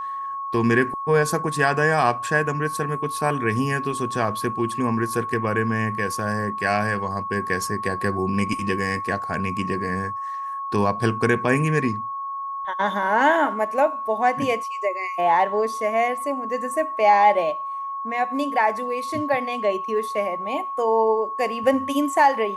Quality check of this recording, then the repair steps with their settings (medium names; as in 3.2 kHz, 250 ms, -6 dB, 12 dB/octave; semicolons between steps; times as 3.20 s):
whine 1.1 kHz -27 dBFS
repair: band-stop 1.1 kHz, Q 30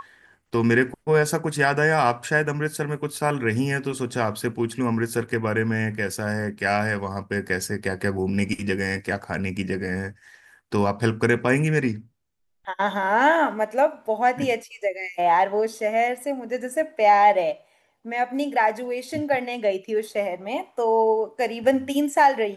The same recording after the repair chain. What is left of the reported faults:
nothing left